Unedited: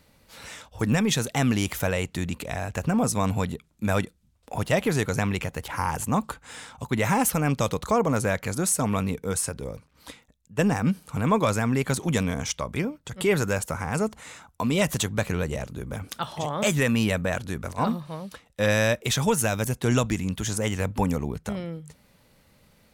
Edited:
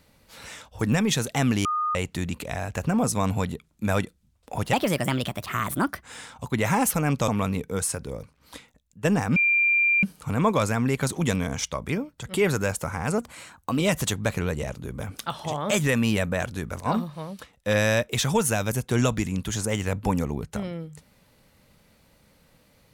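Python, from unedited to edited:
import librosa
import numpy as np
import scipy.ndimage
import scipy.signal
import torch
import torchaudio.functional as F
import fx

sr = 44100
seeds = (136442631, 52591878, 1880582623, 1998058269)

y = fx.edit(x, sr, fx.bleep(start_s=1.65, length_s=0.3, hz=1230.0, db=-22.5),
    fx.speed_span(start_s=4.73, length_s=1.69, speed=1.3),
    fx.cut(start_s=7.67, length_s=1.15),
    fx.insert_tone(at_s=10.9, length_s=0.67, hz=2380.0, db=-17.5),
    fx.speed_span(start_s=14.05, length_s=0.68, speed=1.09), tone=tone)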